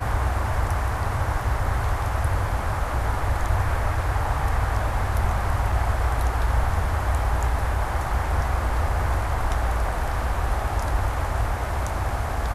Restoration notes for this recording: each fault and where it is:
0:05.72: drop-out 3.5 ms

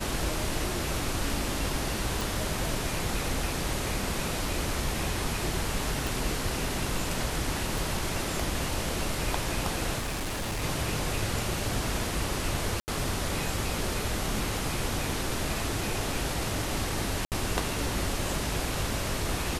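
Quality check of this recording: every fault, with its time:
0:02.21: click
0:06.07: click
0:07.78: click
0:09.98–0:10.64: clipping −28.5 dBFS
0:12.80–0:12.88: drop-out 79 ms
0:17.25–0:17.32: drop-out 68 ms

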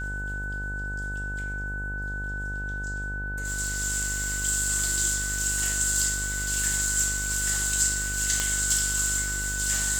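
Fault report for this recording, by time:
mains buzz 50 Hz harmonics 20 −34 dBFS
whistle 1,500 Hz −32 dBFS
0:08.40: click −8 dBFS

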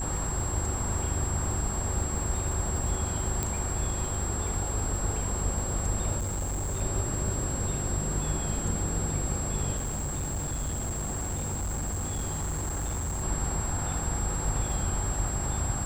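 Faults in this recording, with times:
surface crackle 320 per second −38 dBFS
mains hum 50 Hz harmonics 7 −35 dBFS
whistle 7,600 Hz −34 dBFS
0:03.43: click −13 dBFS
0:06.18–0:06.82: clipping −27.5 dBFS
0:09.76–0:13.24: clipping −28 dBFS

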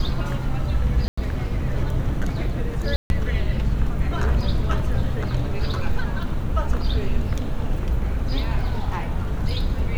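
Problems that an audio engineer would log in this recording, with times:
0:01.08–0:01.18: drop-out 95 ms
0:02.96–0:03.10: drop-out 141 ms

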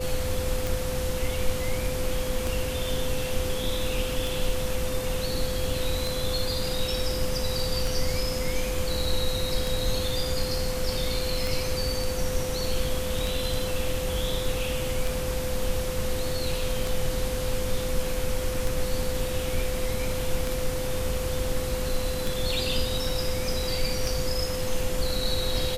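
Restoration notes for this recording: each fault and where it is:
scratch tick 33 1/3 rpm
whistle 510 Hz −31 dBFS

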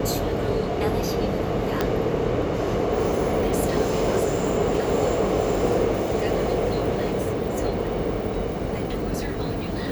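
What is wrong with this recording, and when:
0:01.81: click −9 dBFS

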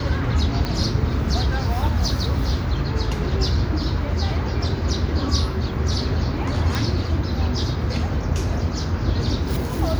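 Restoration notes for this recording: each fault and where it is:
0:00.65: click −11 dBFS
0:06.75: click

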